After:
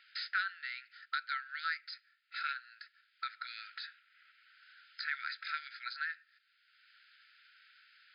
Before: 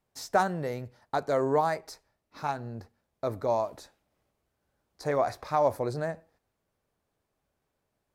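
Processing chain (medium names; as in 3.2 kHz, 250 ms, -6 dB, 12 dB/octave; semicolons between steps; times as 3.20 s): brick-wall FIR band-pass 1.3–5.1 kHz; three bands compressed up and down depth 70%; trim +5 dB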